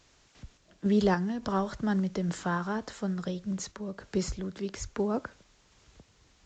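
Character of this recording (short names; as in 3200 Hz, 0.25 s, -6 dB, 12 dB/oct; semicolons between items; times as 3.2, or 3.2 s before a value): a quantiser's noise floor 10-bit, dither triangular; random-step tremolo; A-law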